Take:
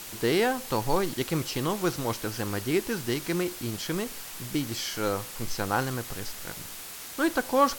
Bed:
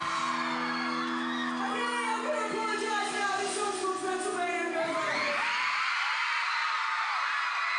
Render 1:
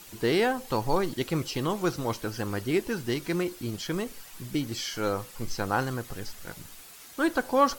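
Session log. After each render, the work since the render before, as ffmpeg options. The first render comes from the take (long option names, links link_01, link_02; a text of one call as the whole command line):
ffmpeg -i in.wav -af "afftdn=noise_reduction=9:noise_floor=-41" out.wav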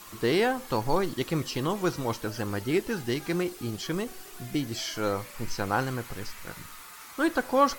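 ffmpeg -i in.wav -i bed.wav -filter_complex "[1:a]volume=-20dB[link_01];[0:a][link_01]amix=inputs=2:normalize=0" out.wav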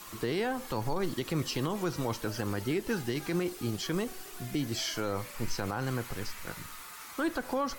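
ffmpeg -i in.wav -filter_complex "[0:a]acrossover=split=200[link_01][link_02];[link_02]acompressor=threshold=-26dB:ratio=4[link_03];[link_01][link_03]amix=inputs=2:normalize=0,alimiter=limit=-21dB:level=0:latency=1:release=42" out.wav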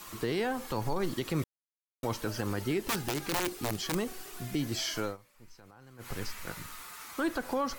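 ffmpeg -i in.wav -filter_complex "[0:a]asettb=1/sr,asplit=3[link_01][link_02][link_03];[link_01]atrim=end=2.844[link_04];[link_02]atrim=start=2.84:end=3.95,asetpts=PTS-STARTPTS,afade=type=in:duration=0.004:curve=qsin,afade=type=out:start_time=1.106:duration=0.004:curve=qsin,aeval=exprs='(mod(16.8*val(0)+1,2)-1)/16.8':channel_layout=same[link_05];[link_03]atrim=start=3.946[link_06];[link_04][link_05]acrossfade=duration=0.004:curve1=hsin:curve2=qsin[link_07];[link_07][link_06]acrossfade=duration=0.004:curve1=qsin:curve2=hsin,asplit=5[link_08][link_09][link_10][link_11][link_12];[link_08]atrim=end=1.44,asetpts=PTS-STARTPTS,afade=type=out:start_time=1.436:duration=0.004:curve=hsin[link_13];[link_09]atrim=start=1.44:end=2.03,asetpts=PTS-STARTPTS,volume=0[link_14];[link_10]atrim=start=2.03:end=5.17,asetpts=PTS-STARTPTS,afade=type=in:duration=0.004:curve=hsin,afade=type=out:start_time=3.02:duration=0.12:silence=0.0841395[link_15];[link_11]atrim=start=5.17:end=5.98,asetpts=PTS-STARTPTS,volume=-21.5dB[link_16];[link_12]atrim=start=5.98,asetpts=PTS-STARTPTS,afade=type=in:duration=0.12:silence=0.0841395[link_17];[link_13][link_14][link_15][link_16][link_17]concat=n=5:v=0:a=1" out.wav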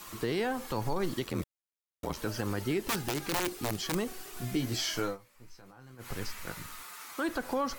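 ffmpeg -i in.wav -filter_complex "[0:a]asettb=1/sr,asplit=3[link_01][link_02][link_03];[link_01]atrim=end=1.244[link_04];[link_02]atrim=start=1.24:end=2.17,asetpts=PTS-STARTPTS,afade=type=in:duration=0.004:curve=qsin,afade=type=out:start_time=0.926:duration=0.004:curve=qsin,aeval=exprs='val(0)*sin(2*PI*43*n/s)':channel_layout=same[link_05];[link_03]atrim=start=2.166[link_06];[link_04][link_05]acrossfade=duration=0.004:curve1=hsin:curve2=qsin[link_07];[link_07][link_06]acrossfade=duration=0.004:curve1=qsin:curve2=hsin,asettb=1/sr,asplit=3[link_08][link_09][link_10];[link_08]atrim=end=4.354[link_11];[link_09]atrim=start=4.35:end=5.95,asetpts=PTS-STARTPTS,afade=type=in:duration=0.004:curve=qsin,afade=type=out:start_time=1.596:duration=0.004:curve=qsin,asplit=2[link_12][link_13];[link_13]adelay=16,volume=-5dB[link_14];[link_12][link_14]amix=inputs=2:normalize=0,atrim=end_sample=70560[link_15];[link_10]atrim=start=5.946[link_16];[link_11][link_15]acrossfade=duration=0.004:curve1=hsin:curve2=qsin[link_17];[link_17][link_16]acrossfade=duration=0.004:curve1=qsin:curve2=hsin,asettb=1/sr,asplit=3[link_18][link_19][link_20];[link_18]atrim=end=6.834[link_21];[link_19]atrim=start=6.83:end=7.29,asetpts=PTS-STARTPTS,afade=type=in:duration=0.004:curve=qsin,afade=type=out:start_time=0.456:duration=0.004:curve=qsin,highpass=frequency=260:poles=1[link_22];[link_20]atrim=start=7.286[link_23];[link_21][link_22]acrossfade=duration=0.004:curve1=hsin:curve2=qsin[link_24];[link_24][link_23]acrossfade=duration=0.004:curve1=qsin:curve2=hsin" out.wav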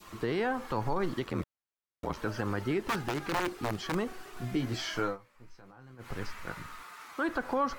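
ffmpeg -i in.wav -af "adynamicequalizer=threshold=0.00447:dfrequency=1300:dqfactor=1:tfrequency=1300:tqfactor=1:attack=5:release=100:ratio=0.375:range=2.5:mode=boostabove:tftype=bell,lowpass=frequency=2500:poles=1" out.wav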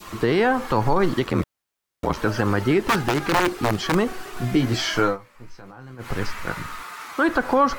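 ffmpeg -i in.wav -af "volume=11.5dB" out.wav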